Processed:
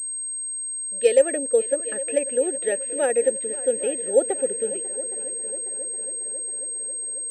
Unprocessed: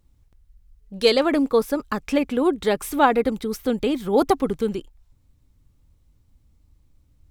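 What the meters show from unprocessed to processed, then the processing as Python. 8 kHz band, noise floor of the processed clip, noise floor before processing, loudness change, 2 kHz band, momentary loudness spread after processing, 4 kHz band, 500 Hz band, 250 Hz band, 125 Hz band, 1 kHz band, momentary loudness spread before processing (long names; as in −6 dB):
+20.0 dB, −30 dBFS, −61 dBFS, −2.0 dB, −4.5 dB, 7 LU, below −10 dB, +1.0 dB, −12.5 dB, below −15 dB, −14.0 dB, 8 LU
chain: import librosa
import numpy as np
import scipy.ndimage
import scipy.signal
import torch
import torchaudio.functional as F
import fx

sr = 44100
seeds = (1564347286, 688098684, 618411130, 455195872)

y = fx.vowel_filter(x, sr, vowel='e')
y = fx.echo_heads(y, sr, ms=272, heads='second and third', feedback_pct=65, wet_db=-17.5)
y = fx.pwm(y, sr, carrier_hz=8400.0)
y = F.gain(torch.from_numpy(y), 6.5).numpy()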